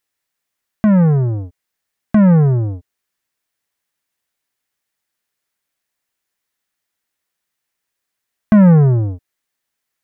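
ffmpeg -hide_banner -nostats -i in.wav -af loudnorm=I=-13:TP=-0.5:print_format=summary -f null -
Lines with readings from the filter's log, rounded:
Input Integrated:    -12.7 LUFS
Input True Peak:      -4.6 dBTP
Input LRA:             1.0 LU
Input Threshold:     -23.8 LUFS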